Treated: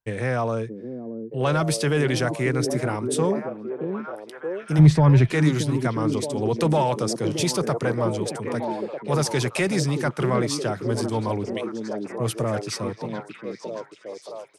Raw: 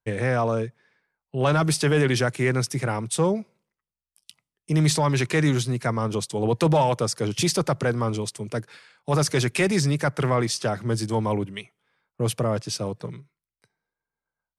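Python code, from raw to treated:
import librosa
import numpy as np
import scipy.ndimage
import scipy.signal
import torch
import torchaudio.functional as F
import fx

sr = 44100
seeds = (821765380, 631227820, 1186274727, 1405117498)

y = fx.riaa(x, sr, side='playback', at=(4.78, 5.3), fade=0.02)
y = fx.echo_stepped(y, sr, ms=624, hz=280.0, octaves=0.7, feedback_pct=70, wet_db=-1.0)
y = y * 10.0 ** (-1.5 / 20.0)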